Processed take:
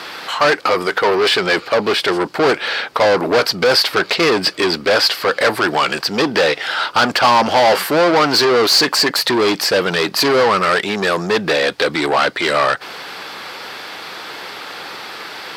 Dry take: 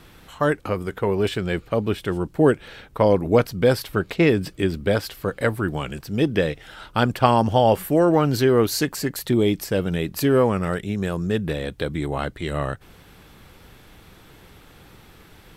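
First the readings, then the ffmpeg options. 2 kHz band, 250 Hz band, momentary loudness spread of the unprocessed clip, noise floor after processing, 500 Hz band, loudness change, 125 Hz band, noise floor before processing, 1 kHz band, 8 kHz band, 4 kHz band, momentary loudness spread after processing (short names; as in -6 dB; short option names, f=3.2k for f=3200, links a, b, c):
+13.5 dB, +0.5 dB, 10 LU, -35 dBFS, +5.5 dB, +7.0 dB, -7.0 dB, -50 dBFS, +9.5 dB, +10.0 dB, +17.5 dB, 17 LU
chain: -filter_complex "[0:a]asplit=2[a][b];[b]highpass=f=720:p=1,volume=32dB,asoftclip=type=tanh:threshold=-2dB[c];[a][c]amix=inputs=2:normalize=0,lowpass=f=1.4k:p=1,volume=-6dB,highpass=f=770:p=1,equalizer=f=4.7k:t=o:w=0.45:g=11,volume=2dB"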